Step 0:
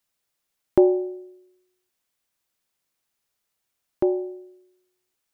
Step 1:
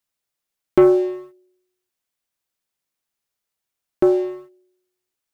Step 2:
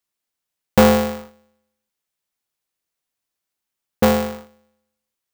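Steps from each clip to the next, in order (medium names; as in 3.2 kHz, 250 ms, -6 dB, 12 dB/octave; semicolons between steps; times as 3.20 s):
waveshaping leveller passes 2
polarity switched at an audio rate 150 Hz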